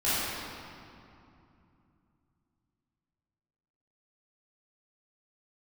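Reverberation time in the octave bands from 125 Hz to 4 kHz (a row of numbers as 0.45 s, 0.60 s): 4.1 s, 3.8 s, 2.7 s, 2.7 s, 2.1 s, 1.7 s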